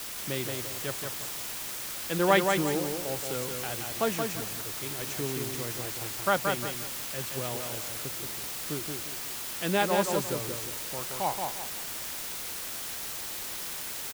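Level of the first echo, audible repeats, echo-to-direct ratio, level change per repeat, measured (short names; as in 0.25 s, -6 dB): -4.5 dB, 3, -4.0 dB, -10.0 dB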